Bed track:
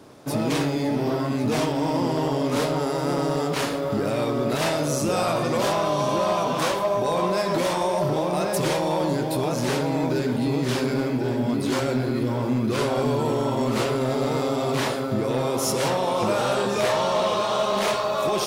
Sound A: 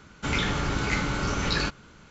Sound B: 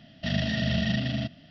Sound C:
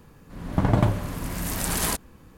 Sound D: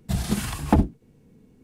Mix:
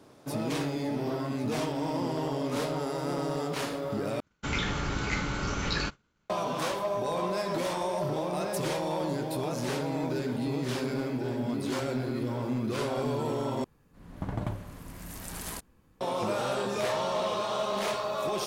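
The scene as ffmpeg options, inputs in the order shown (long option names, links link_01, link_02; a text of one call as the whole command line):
ffmpeg -i bed.wav -i cue0.wav -i cue1.wav -i cue2.wav -filter_complex "[0:a]volume=-7.5dB[link_01];[1:a]agate=range=-33dB:threshold=-40dB:ratio=3:release=100:detection=peak[link_02];[link_01]asplit=3[link_03][link_04][link_05];[link_03]atrim=end=4.204[link_06];[link_02]atrim=end=2.1,asetpts=PTS-STARTPTS,volume=-4dB[link_07];[link_04]atrim=start=6.296:end=13.644[link_08];[3:a]atrim=end=2.37,asetpts=PTS-STARTPTS,volume=-13dB[link_09];[link_05]atrim=start=16.006[link_10];[link_06][link_07]acrossfade=duration=0.004:curve1=hsin:curve2=hsin[link_11];[link_11][link_08]acrossfade=duration=0.004:curve1=hsin:curve2=hsin[link_12];[link_12][link_09]acrossfade=duration=0.004:curve1=hsin:curve2=hsin[link_13];[link_13][link_10]acrossfade=duration=0.004:curve1=hsin:curve2=hsin" out.wav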